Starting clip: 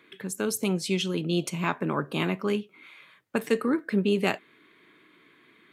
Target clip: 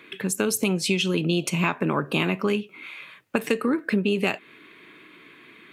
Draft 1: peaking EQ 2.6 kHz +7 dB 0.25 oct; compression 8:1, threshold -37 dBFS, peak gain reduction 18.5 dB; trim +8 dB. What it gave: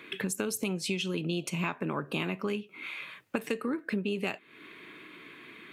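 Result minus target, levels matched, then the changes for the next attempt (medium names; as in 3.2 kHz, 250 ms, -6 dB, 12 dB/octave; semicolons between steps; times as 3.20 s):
compression: peak gain reduction +9 dB
change: compression 8:1, threshold -27 dBFS, peak gain reduction 9.5 dB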